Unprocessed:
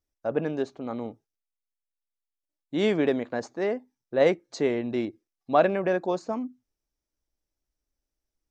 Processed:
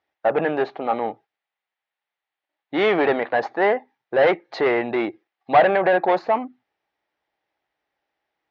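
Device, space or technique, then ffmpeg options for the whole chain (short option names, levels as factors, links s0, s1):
overdrive pedal into a guitar cabinet: -filter_complex "[0:a]asplit=2[s0][s1];[s1]highpass=f=720:p=1,volume=15.8,asoftclip=type=tanh:threshold=0.422[s2];[s0][s2]amix=inputs=2:normalize=0,lowpass=f=3600:p=1,volume=0.501,highpass=90,equalizer=f=250:t=q:w=4:g=-6,equalizer=f=790:t=q:w=4:g=9,equalizer=f=1900:t=q:w=4:g=6,lowpass=f=3700:w=0.5412,lowpass=f=3700:w=1.3066,asettb=1/sr,asplit=3[s3][s4][s5];[s3]atrim=end=5.554[s6];[s4]atrim=start=5.55:end=6.1,asetpts=PTS-STARTPTS,afade=t=in:d=0.004:c=qsin,afade=t=out:st=0.546:d=0.004:c=qsin,lowpass=f=5000:w=0.5412,lowpass=f=5000:w=1.3066[s7];[s5]atrim=start=6.096[s8];[s6][s7]acrossfade=d=0.004:c1=hsin:c2=qsin[s9];[s9][s8]acrossfade=d=0.004:c1=qsin:c2=hsin,volume=0.75"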